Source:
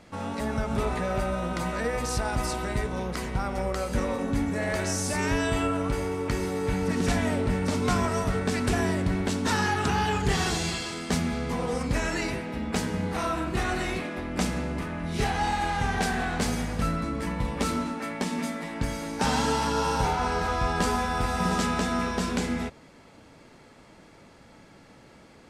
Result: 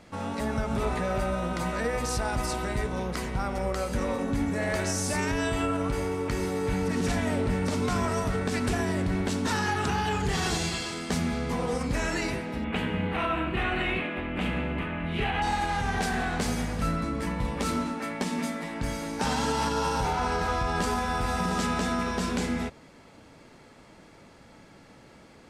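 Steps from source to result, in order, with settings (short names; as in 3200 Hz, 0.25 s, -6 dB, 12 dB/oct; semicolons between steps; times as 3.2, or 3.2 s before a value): 12.64–15.42 resonant high shelf 4000 Hz -12 dB, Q 3; limiter -18 dBFS, peak gain reduction 7.5 dB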